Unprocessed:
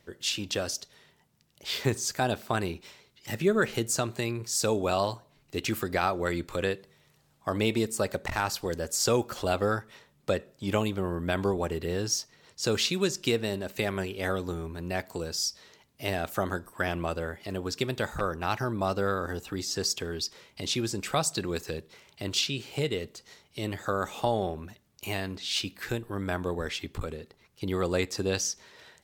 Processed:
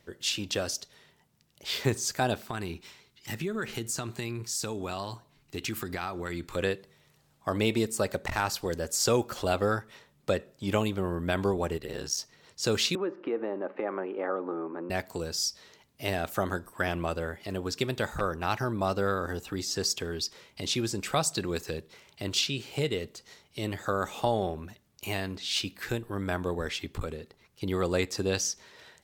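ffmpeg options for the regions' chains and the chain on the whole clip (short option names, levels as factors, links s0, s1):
-filter_complex "[0:a]asettb=1/sr,asplit=3[s0][s1][s2];[s0]atrim=end=2.444[s3];[s1]atrim=start=2.44:end=6.56,asetpts=PTS-STARTPTS,afade=t=in:d=0.004:c=qsin,afade=t=out:st=4.116:d=0.004:c=qsin,acompressor=threshold=0.0355:ratio=3:attack=3.2:release=140:knee=1:detection=peak,equalizer=f=560:w=2.3:g=-7[s4];[s2]atrim=start=6.556[s5];[s3][s4]acrossfade=d=0.004:c1=hsin:c2=qsin[s6];[s6][s5]acrossfade=d=0.004:c1=qsin:c2=hsin,asettb=1/sr,asplit=3[s7][s8][s9];[s7]atrim=end=11.774[s10];[s8]atrim=start=11.77:end=12.18,asetpts=PTS-STARTPTS,afade=t=in:d=0.004:c=qsin,afade=t=out:st=0.406:d=0.004:c=qsin,lowshelf=f=450:g=-7,aeval=exprs='val(0)*sin(2*PI*34*n/s)':c=same[s11];[s9]atrim=start=12.176[s12];[s10][s11]acrossfade=d=0.004:c1=hsin:c2=qsin[s13];[s13][s12]acrossfade=d=0.004:c1=qsin:c2=hsin,asettb=1/sr,asplit=3[s14][s15][s16];[s14]atrim=end=12.954[s17];[s15]atrim=start=12.95:end=14.9,asetpts=PTS-STARTPTS,afade=t=in:d=0.004:c=qsin,afade=t=out:st=1.946:d=0.004:c=qsin,acompressor=threshold=0.02:ratio=2.5:attack=3.2:release=140:knee=1:detection=peak,highpass=f=220:w=0.5412,highpass=f=220:w=1.3066,equalizer=f=320:t=q:w=4:g=10,equalizer=f=530:t=q:w=4:g=9,equalizer=f=830:t=q:w=4:g=8,equalizer=f=1200:t=q:w=4:g=9,lowpass=f=2000:w=0.5412,lowpass=f=2000:w=1.3066[s18];[s16]atrim=start=14.896[s19];[s17][s18]acrossfade=d=0.004:c1=hsin:c2=qsin[s20];[s20][s19]acrossfade=d=0.004:c1=qsin:c2=hsin"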